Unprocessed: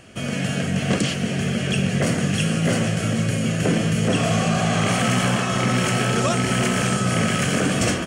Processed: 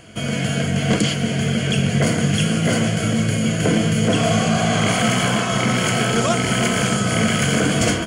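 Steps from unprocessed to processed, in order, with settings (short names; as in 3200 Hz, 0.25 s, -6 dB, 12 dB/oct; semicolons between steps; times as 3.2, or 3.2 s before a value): ripple EQ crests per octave 1.8, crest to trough 7 dB; gain +2 dB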